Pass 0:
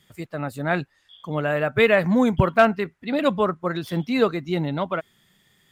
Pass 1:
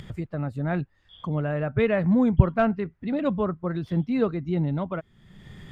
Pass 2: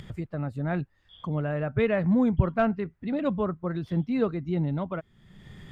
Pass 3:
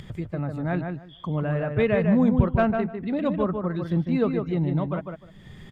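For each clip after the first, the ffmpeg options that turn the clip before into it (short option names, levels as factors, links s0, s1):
-af "aemphasis=mode=reproduction:type=riaa,acompressor=mode=upward:threshold=0.141:ratio=2.5,volume=0.398"
-af "alimiter=level_in=1.78:limit=0.891:release=50:level=0:latency=1,volume=0.447"
-filter_complex "[0:a]bandreject=f=1400:w=21,asplit=2[s0][s1];[s1]adelay=151,lowpass=f=2500:p=1,volume=0.562,asplit=2[s2][s3];[s3]adelay=151,lowpass=f=2500:p=1,volume=0.18,asplit=2[s4][s5];[s5]adelay=151,lowpass=f=2500:p=1,volume=0.18[s6];[s2][s4][s6]amix=inputs=3:normalize=0[s7];[s0][s7]amix=inputs=2:normalize=0,volume=1.26"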